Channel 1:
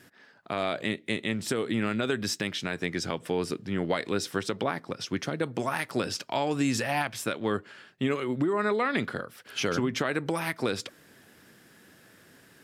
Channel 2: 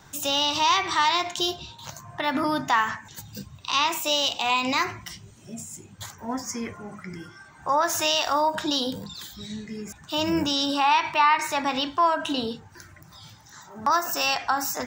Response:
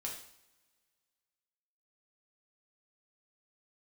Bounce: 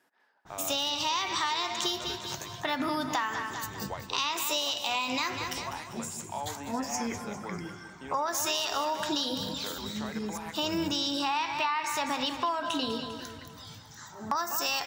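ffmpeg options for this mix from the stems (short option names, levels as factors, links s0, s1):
-filter_complex "[0:a]highpass=280,equalizer=f=890:w=1.7:g=12.5,volume=0.158,asplit=2[s0][s1];[s1]volume=0.251[s2];[1:a]adynamicequalizer=threshold=0.02:dfrequency=2900:dqfactor=0.7:tfrequency=2900:tqfactor=0.7:attack=5:release=100:ratio=0.375:range=2:mode=boostabove:tftype=highshelf,adelay=450,volume=0.891,asplit=2[s3][s4];[s4]volume=0.266[s5];[s2][s5]amix=inputs=2:normalize=0,aecho=0:1:199|398|597|796|995|1194|1393:1|0.49|0.24|0.118|0.0576|0.0282|0.0138[s6];[s0][s3][s6]amix=inputs=3:normalize=0,acompressor=threshold=0.0447:ratio=5"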